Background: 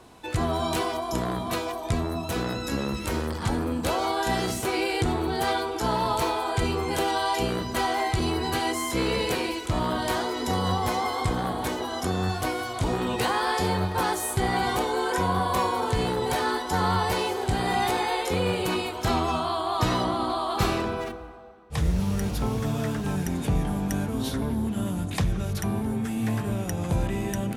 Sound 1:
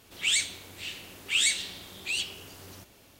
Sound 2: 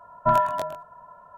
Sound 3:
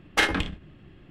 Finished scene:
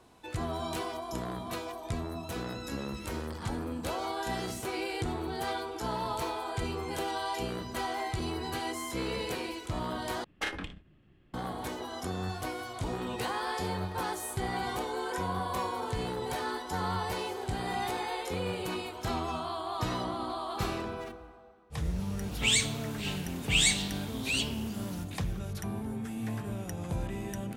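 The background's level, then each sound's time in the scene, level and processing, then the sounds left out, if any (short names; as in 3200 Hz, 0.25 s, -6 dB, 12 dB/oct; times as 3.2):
background -8.5 dB
10.24 replace with 3 -12.5 dB
22.2 add 1 -0.5 dB
not used: 2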